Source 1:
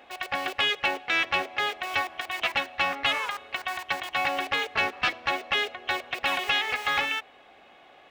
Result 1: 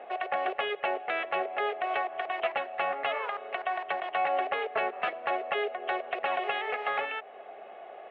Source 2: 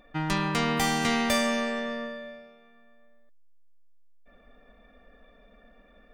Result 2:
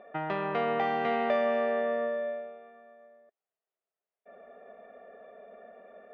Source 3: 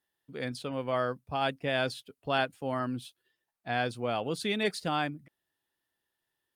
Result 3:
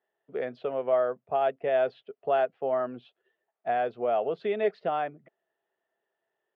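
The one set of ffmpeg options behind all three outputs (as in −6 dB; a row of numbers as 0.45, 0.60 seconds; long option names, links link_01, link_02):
-af "acompressor=threshold=-35dB:ratio=2,highpass=280,equalizer=frequency=290:width_type=q:width=4:gain=-10,equalizer=frequency=410:width_type=q:width=4:gain=8,equalizer=frequency=660:width_type=q:width=4:gain=10,equalizer=frequency=990:width_type=q:width=4:gain=-4,equalizer=frequency=1600:width_type=q:width=4:gain=-4,equalizer=frequency=2300:width_type=q:width=4:gain=-5,lowpass=frequency=2400:width=0.5412,lowpass=frequency=2400:width=1.3066,volume=5dB"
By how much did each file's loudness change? −4.5, −3.0, +3.5 LU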